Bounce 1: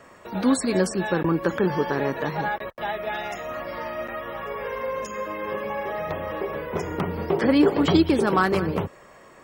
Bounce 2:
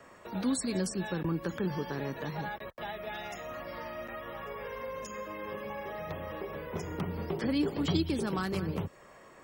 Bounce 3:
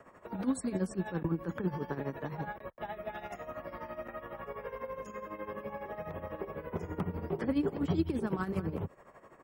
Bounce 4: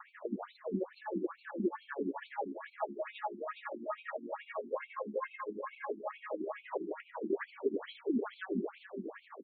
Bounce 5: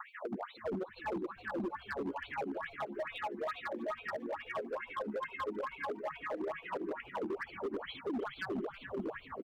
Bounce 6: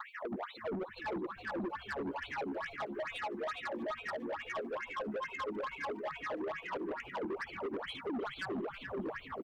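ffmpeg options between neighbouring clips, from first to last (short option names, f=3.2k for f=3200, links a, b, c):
-filter_complex "[0:a]acrossover=split=230|3000[a][b][c];[b]acompressor=threshold=-37dB:ratio=2[d];[a][d][c]amix=inputs=3:normalize=0,volume=-5dB"
-af "tremolo=f=12:d=0.72,firequalizer=gain_entry='entry(1000,0);entry(4100,-14);entry(9600,-7)':delay=0.05:min_phase=1,volume=2dB"
-filter_complex "[0:a]acompressor=threshold=-45dB:ratio=2,asplit=2[a][b];[b]aecho=0:1:413|826|1239|1652:0.501|0.16|0.0513|0.0164[c];[a][c]amix=inputs=2:normalize=0,afftfilt=real='re*between(b*sr/1024,260*pow(3200/260,0.5+0.5*sin(2*PI*2.3*pts/sr))/1.41,260*pow(3200/260,0.5+0.5*sin(2*PI*2.3*pts/sr))*1.41)':imag='im*between(b*sr/1024,260*pow(3200/260,0.5+0.5*sin(2*PI*2.3*pts/sr))/1.41,260*pow(3200/260,0.5+0.5*sin(2*PI*2.3*pts/sr))*1.41)':win_size=1024:overlap=0.75,volume=12dB"
-filter_complex "[0:a]alimiter=level_in=8.5dB:limit=-24dB:level=0:latency=1:release=226,volume=-8.5dB,asoftclip=type=hard:threshold=-39dB,asplit=4[a][b][c][d];[b]adelay=319,afreqshift=-130,volume=-19.5dB[e];[c]adelay=638,afreqshift=-260,volume=-26.4dB[f];[d]adelay=957,afreqshift=-390,volume=-33.4dB[g];[a][e][f][g]amix=inputs=4:normalize=0,volume=6dB"
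-af "asoftclip=type=tanh:threshold=-37.5dB,volume=3.5dB"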